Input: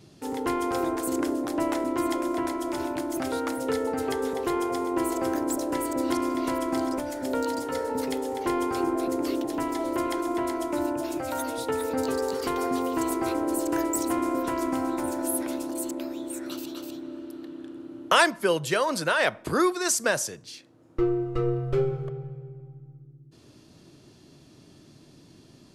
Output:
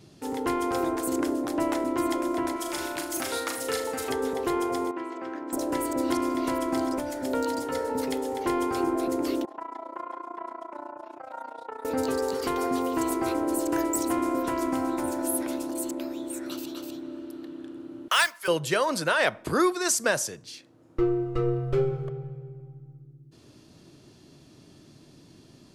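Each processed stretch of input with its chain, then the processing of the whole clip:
0:02.56–0:04.10: tilt shelving filter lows −6.5 dB, about 1,100 Hz + double-tracking delay 36 ms −11 dB + flutter between parallel walls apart 6.9 metres, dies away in 0.34 s
0:04.91–0:05.53: band-pass filter 310–2,300 Hz + parametric band 580 Hz −10 dB 2 octaves
0:09.45–0:11.85: resonant band-pass 1,000 Hz, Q 1.8 + amplitude modulation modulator 29 Hz, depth 75%
0:18.08–0:18.48: high-pass filter 1,300 Hz + noise that follows the level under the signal 19 dB
whole clip: no processing

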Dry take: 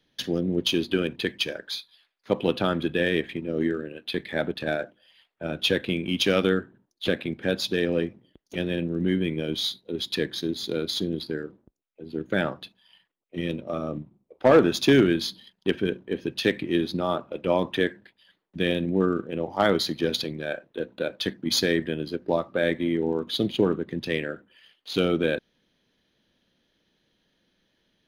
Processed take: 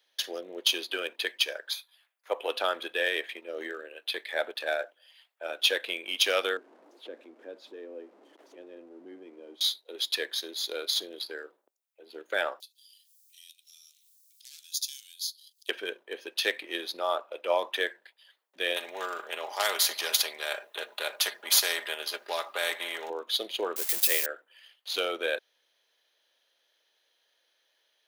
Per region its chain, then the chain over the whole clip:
0:01.73–0:02.50: high-pass filter 310 Hz + parametric band 4,400 Hz −11 dB 0.85 octaves
0:06.57–0:09.61: converter with a step at zero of −33 dBFS + resonant band-pass 270 Hz, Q 2.8 + upward compression, threshold −33 dBFS
0:12.60–0:15.69: inverse Chebyshev high-pass filter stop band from 1,100 Hz, stop band 70 dB + upward compression, threshold −46 dBFS
0:18.76–0:23.10: comb filter 4.9 ms, depth 51% + every bin compressed towards the loudest bin 2 to 1
0:23.76–0:24.26: spike at every zero crossing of −19.5 dBFS + parametric band 1,200 Hz −4 dB 0.41 octaves + transient designer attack +2 dB, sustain −4 dB
whole clip: high-pass filter 530 Hz 24 dB per octave; high-shelf EQ 6,800 Hz +9.5 dB; level −1 dB

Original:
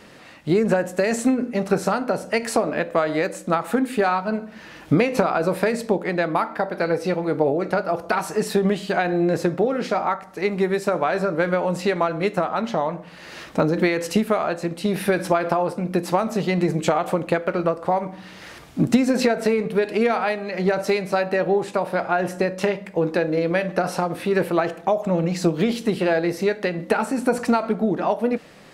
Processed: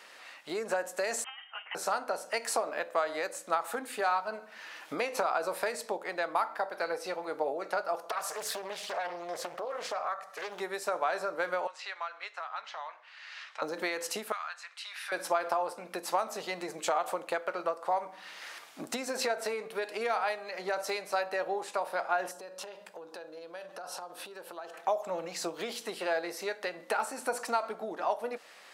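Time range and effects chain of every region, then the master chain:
0:01.24–0:01.75: high-pass filter 1,200 Hz + voice inversion scrambler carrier 3,400 Hz
0:08.09–0:10.60: comb filter 1.7 ms, depth 84% + downward compressor 2.5 to 1, threshold −24 dBFS + highs frequency-modulated by the lows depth 0.9 ms
0:11.67–0:13.62: high-pass filter 1,400 Hz + high-frequency loss of the air 130 metres
0:14.32–0:15.12: high-pass filter 1,200 Hz 24 dB per octave + high-frequency loss of the air 68 metres
0:22.31–0:24.74: parametric band 2,100 Hz −15 dB 0.56 octaves + notch filter 1,200 Hz, Q 21 + downward compressor 4 to 1, threshold −31 dBFS
whole clip: dynamic equaliser 2,300 Hz, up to −7 dB, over −40 dBFS, Q 0.83; high-pass filter 840 Hz 12 dB per octave; level −2.5 dB

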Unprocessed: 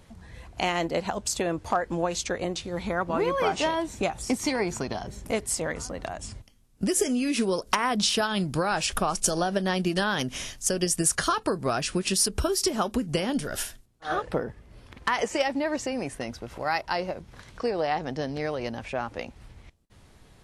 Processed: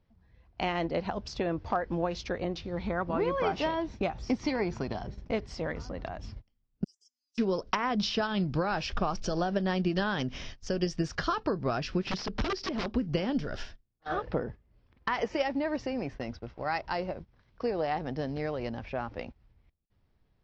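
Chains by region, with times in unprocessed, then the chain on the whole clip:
0:06.84–0:07.38: inverse Chebyshev high-pass filter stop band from 2,100 Hz, stop band 70 dB + compressor whose output falls as the input rises −36 dBFS, ratio −0.5
0:12.06–0:12.96: low-pass filter 5,200 Hz + wrap-around overflow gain 21.5 dB
whole clip: noise gate −39 dBFS, range −16 dB; elliptic low-pass filter 5,400 Hz, stop band 60 dB; spectral tilt −1.5 dB per octave; level −4 dB

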